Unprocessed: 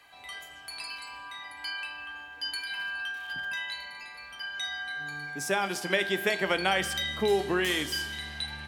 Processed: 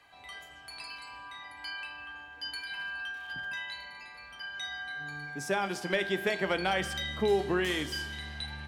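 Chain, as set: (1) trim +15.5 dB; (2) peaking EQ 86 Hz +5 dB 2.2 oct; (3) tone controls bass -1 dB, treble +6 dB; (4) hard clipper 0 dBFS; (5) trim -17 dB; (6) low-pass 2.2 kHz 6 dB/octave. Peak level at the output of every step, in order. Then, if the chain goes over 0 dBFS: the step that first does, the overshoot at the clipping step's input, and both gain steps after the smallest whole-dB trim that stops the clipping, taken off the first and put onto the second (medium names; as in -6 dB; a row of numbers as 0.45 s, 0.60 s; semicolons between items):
+4.5 dBFS, +4.5 dBFS, +5.0 dBFS, 0.0 dBFS, -17.0 dBFS, -17.0 dBFS; step 1, 5.0 dB; step 1 +10.5 dB, step 5 -12 dB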